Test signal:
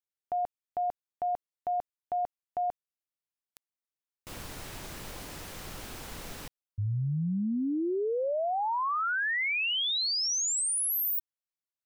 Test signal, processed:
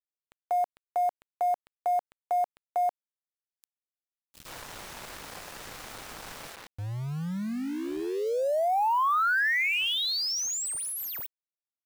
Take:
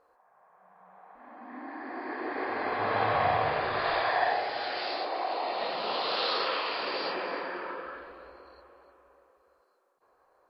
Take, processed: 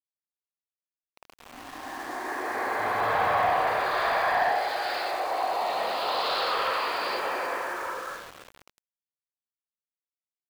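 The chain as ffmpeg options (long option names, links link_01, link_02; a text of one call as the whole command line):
ffmpeg -i in.wav -filter_complex "[0:a]acrossover=split=330|2900[link_01][link_02][link_03];[link_03]adelay=70[link_04];[link_02]adelay=190[link_05];[link_01][link_05][link_04]amix=inputs=3:normalize=0,asplit=2[link_06][link_07];[link_07]highpass=frequency=720:poles=1,volume=13dB,asoftclip=type=tanh:threshold=-14.5dB[link_08];[link_06][link_08]amix=inputs=2:normalize=0,lowpass=frequency=2600:poles=1,volume=-6dB,aeval=exprs='val(0)*gte(abs(val(0)),0.0112)':channel_layout=same" out.wav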